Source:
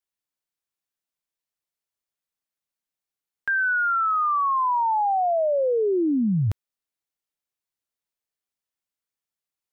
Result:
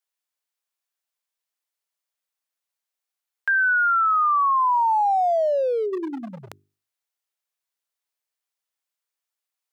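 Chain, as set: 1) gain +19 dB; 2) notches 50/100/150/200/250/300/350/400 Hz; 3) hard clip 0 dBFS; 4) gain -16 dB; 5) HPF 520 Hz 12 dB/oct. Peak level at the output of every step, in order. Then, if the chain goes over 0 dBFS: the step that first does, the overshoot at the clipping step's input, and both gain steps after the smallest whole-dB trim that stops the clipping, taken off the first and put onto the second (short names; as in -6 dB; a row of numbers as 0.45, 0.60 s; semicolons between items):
+0.5, +3.5, 0.0, -16.0, -15.5 dBFS; step 1, 3.5 dB; step 1 +15 dB, step 4 -12 dB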